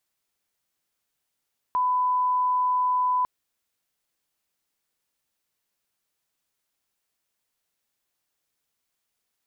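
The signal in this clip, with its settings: line-up tone -20 dBFS 1.50 s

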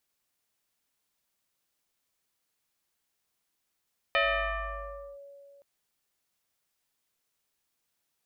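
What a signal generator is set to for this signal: FM tone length 1.47 s, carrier 562 Hz, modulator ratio 1.09, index 4, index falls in 1.03 s linear, decay 2.67 s, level -21 dB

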